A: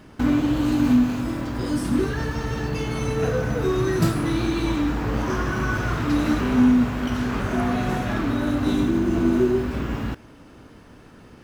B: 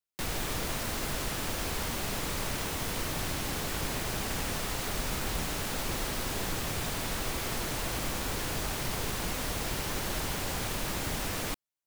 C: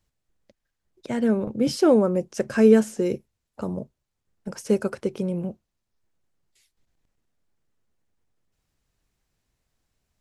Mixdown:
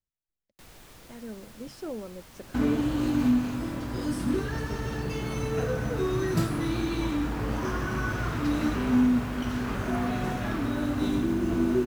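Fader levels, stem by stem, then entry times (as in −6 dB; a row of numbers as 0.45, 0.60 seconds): −5.5, −17.5, −19.0 decibels; 2.35, 0.40, 0.00 seconds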